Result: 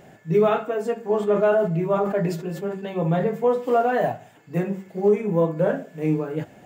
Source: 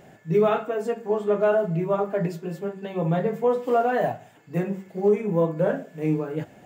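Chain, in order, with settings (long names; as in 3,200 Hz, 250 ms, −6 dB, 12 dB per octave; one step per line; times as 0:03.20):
0:01.02–0:03.24: level that may fall only so fast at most 78 dB per second
level +1.5 dB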